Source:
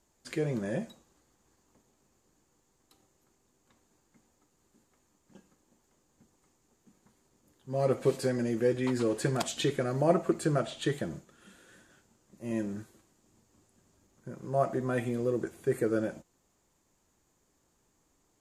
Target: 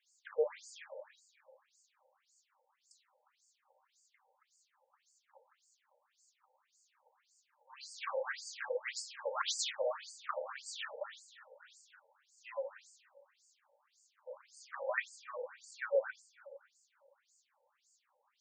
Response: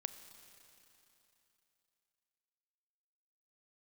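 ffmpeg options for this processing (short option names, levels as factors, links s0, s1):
-filter_complex "[0:a]asettb=1/sr,asplit=3[s0][s1][s2];[s0]atrim=end=7.854[s3];[s1]atrim=start=7.85:end=8.7,asetpts=PTS-STARTPTS,afade=t=in:d=0.004:c=qsin,afade=t=out:st=0.846:d=0.004:c=qsin,aeval=exprs='val(0)+0.5*0.0119*sgn(val(0))':c=same[s4];[s2]atrim=start=8.696[s5];[s3][s4]acrossfade=d=0.004:c1=hsin:c2=qsin[s6];[s6][s5]acrossfade=d=0.004:c1=qsin:c2=hsin,asuperstop=centerf=700:order=4:qfactor=5.5[s7];[1:a]atrim=start_sample=2205,asetrate=66150,aresample=44100[s8];[s7][s8]afir=irnorm=-1:irlink=0,afftfilt=real='re*between(b*sr/1024,640*pow(6400/640,0.5+0.5*sin(2*PI*1.8*pts/sr))/1.41,640*pow(6400/640,0.5+0.5*sin(2*PI*1.8*pts/sr))*1.41)':imag='im*between(b*sr/1024,640*pow(6400/640,0.5+0.5*sin(2*PI*1.8*pts/sr))/1.41,640*pow(6400/640,0.5+0.5*sin(2*PI*1.8*pts/sr))*1.41)':win_size=1024:overlap=0.75,volume=3.76"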